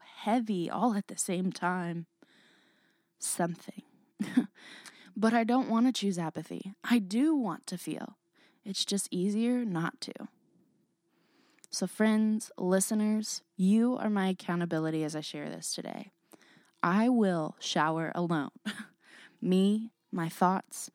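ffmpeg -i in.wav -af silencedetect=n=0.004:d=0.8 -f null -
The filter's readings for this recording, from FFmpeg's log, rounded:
silence_start: 2.23
silence_end: 3.21 | silence_duration: 0.98
silence_start: 10.26
silence_end: 11.59 | silence_duration: 1.33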